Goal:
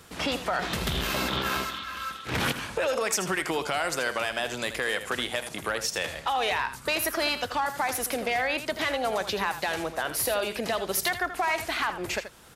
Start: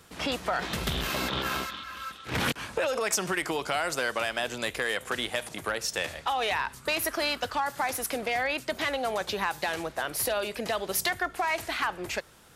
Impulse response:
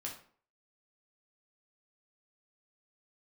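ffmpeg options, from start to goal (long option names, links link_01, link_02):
-filter_complex "[0:a]asplit=2[link_01][link_02];[link_02]alimiter=level_in=0.5dB:limit=-24dB:level=0:latency=1:release=295,volume=-0.5dB,volume=1.5dB[link_03];[link_01][link_03]amix=inputs=2:normalize=0,aecho=1:1:81:0.282,volume=-3dB"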